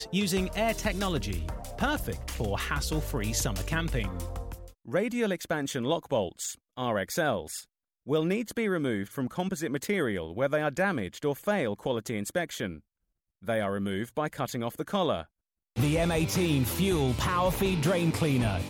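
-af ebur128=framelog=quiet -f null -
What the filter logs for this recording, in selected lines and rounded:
Integrated loudness:
  I:         -29.8 LUFS
  Threshold: -40.0 LUFS
Loudness range:
  LRA:         4.3 LU
  Threshold: -50.5 LUFS
  LRA low:   -32.2 LUFS
  LRA high:  -27.9 LUFS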